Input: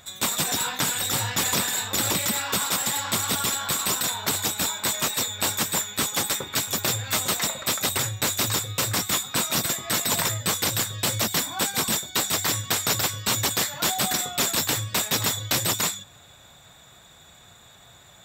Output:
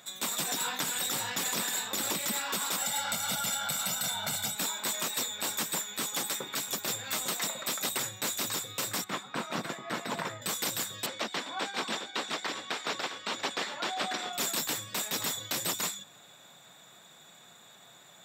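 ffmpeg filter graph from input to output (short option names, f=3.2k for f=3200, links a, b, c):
-filter_complex "[0:a]asettb=1/sr,asplit=3[a][b][c];[a]atrim=end=2.814[d];[b]atrim=start=2.81:end=4.55,asetpts=PTS-STARTPTS,afade=t=in:d=0.004:c=qsin,afade=t=out:st=1.736:d=0.004:c=qsin,asubboost=boost=6.5:cutoff=180,aecho=1:1:1.4:0.83,atrim=end_sample=76734[e];[c]atrim=start=4.546[f];[d][e]acrossfade=d=0.004:c1=hsin:c2=qsin[g];[g][f]acrossfade=d=0.004:c1=qsin:c2=hsin,asettb=1/sr,asplit=3[h][i][j];[h]atrim=end=9.044[k];[i]atrim=start=9.04:end=10.42,asetpts=PTS-STARTPTS,afade=t=in:d=0.004:c=qsin,afade=t=out:st=1.376:d=0.004:c=qsin,lowpass=1.6k,aemphasis=mode=production:type=75fm[l];[j]atrim=start=10.416[m];[k][l]acrossfade=d=0.004:c1=hsin:c2=qsin[n];[n][m]acrossfade=d=0.004:c1=qsin:c2=hsin,asettb=1/sr,asplit=3[o][p][q];[o]atrim=end=11.064[r];[p]atrim=start=11.06:end=14.33,asetpts=PTS-STARTPTS,afade=t=in:d=0.004:c=qsin,afade=t=out:st=3.266:d=0.004:c=qsin,highpass=270,lowpass=3.6k,aecho=1:1:399:0.266,atrim=end_sample=144207[s];[q]atrim=start=14.326[t];[r][s]acrossfade=d=0.004:c1=hsin:c2=qsin[u];[u][t]acrossfade=d=0.004:c1=qsin:c2=hsin,alimiter=limit=-17.5dB:level=0:latency=1:release=180,highpass=f=160:w=0.5412,highpass=f=160:w=1.3066,volume=-3.5dB"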